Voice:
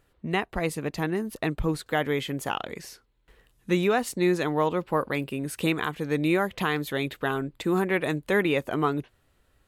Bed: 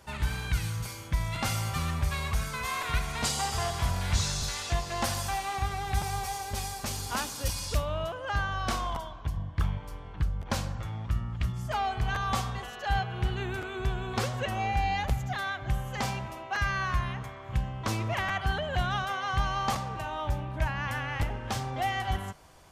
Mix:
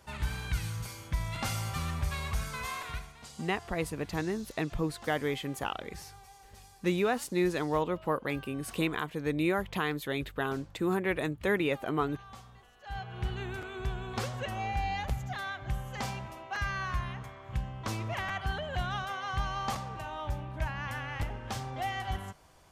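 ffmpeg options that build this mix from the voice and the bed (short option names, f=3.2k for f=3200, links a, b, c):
-filter_complex "[0:a]adelay=3150,volume=-5dB[a];[1:a]volume=12dB,afade=t=out:st=2.63:d=0.52:silence=0.149624,afade=t=in:st=12.79:d=0.48:silence=0.16788[b];[a][b]amix=inputs=2:normalize=0"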